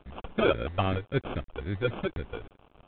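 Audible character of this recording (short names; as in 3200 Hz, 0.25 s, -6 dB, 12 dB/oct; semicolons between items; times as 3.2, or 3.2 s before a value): a quantiser's noise floor 8-bit, dither none; phasing stages 12, 3.7 Hz, lowest notch 180–1700 Hz; aliases and images of a low sample rate 1900 Hz, jitter 0%; µ-law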